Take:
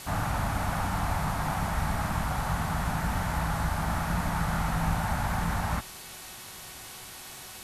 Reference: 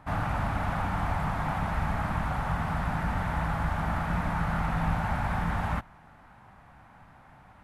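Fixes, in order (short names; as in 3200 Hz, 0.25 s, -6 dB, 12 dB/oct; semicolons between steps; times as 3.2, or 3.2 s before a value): de-hum 371.9 Hz, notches 12; denoiser 10 dB, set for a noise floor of -44 dBFS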